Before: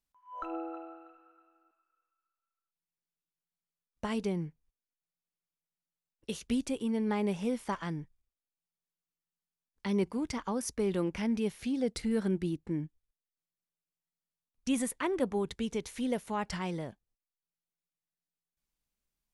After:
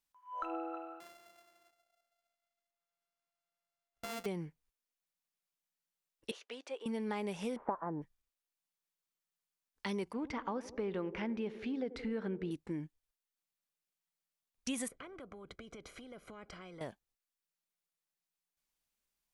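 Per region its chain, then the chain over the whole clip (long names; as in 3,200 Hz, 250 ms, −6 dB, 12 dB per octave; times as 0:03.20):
0:01.00–0:04.26: samples sorted by size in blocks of 64 samples + downward compressor 1.5 to 1, threshold −53 dBFS
0:06.31–0:06.86: high-pass filter 450 Hz 24 dB per octave + head-to-tape spacing loss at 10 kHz 24 dB
0:07.56–0:08.02: low-pass filter 1,200 Hz 24 dB per octave + parametric band 620 Hz +13 dB 2.9 octaves
0:10.13–0:12.51: low-pass filter 2,400 Hz + feedback echo with a band-pass in the loop 84 ms, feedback 81%, band-pass 400 Hz, level −15.5 dB
0:14.88–0:16.81: downward compressor 5 to 1, threshold −40 dBFS + moving average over 49 samples + every bin compressed towards the loudest bin 2 to 1
whole clip: low-shelf EQ 320 Hz −10 dB; downward compressor, threshold −36 dBFS; level +2 dB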